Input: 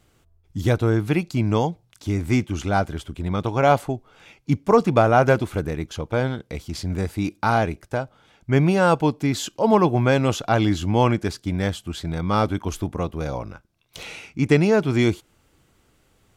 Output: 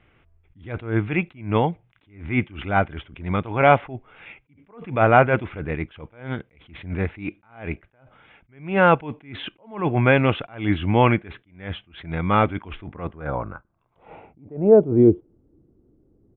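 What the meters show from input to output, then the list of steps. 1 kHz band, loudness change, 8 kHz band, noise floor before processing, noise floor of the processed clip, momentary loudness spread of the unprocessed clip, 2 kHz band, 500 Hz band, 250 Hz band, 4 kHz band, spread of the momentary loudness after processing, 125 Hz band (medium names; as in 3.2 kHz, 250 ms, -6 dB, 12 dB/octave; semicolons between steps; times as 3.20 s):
0.0 dB, +0.5 dB, under -40 dB, -62 dBFS, -63 dBFS, 13 LU, +2.0 dB, 0.0 dB, -2.0 dB, -4.0 dB, 19 LU, -3.0 dB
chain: resampled via 8 kHz; low-pass sweep 2.3 kHz -> 340 Hz, 12.77–15.39 s; attacks held to a fixed rise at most 140 dB/s; trim +1 dB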